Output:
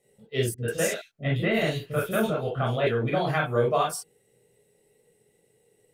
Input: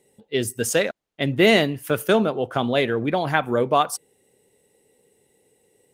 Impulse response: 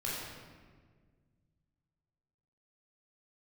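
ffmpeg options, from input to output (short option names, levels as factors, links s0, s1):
-filter_complex "[1:a]atrim=start_sample=2205,atrim=end_sample=3087[s0];[0:a][s0]afir=irnorm=-1:irlink=0,alimiter=limit=0.376:level=0:latency=1:release=175,asettb=1/sr,asplit=3[s1][s2][s3];[s1]atrim=end=0.544[s4];[s2]atrim=start=0.54:end=2.87,asetpts=PTS-STARTPTS,afade=t=in:d=0.004:c=qsin,afade=t=out:st=2.326:d=0.004:c=qsin,acrossover=split=360|3400[s5][s6][s7];[s6]adelay=40[s8];[s7]adelay=140[s9];[s5][s8][s9]amix=inputs=3:normalize=0,atrim=end_sample=102753[s10];[s3]atrim=start=2.866[s11];[s4][s10]acrossfade=d=0.004:c1=hsin:c2=qsin[s12];[s12][s11]acrossfade=d=0.004:c1=qsin:c2=hsin,volume=0.631"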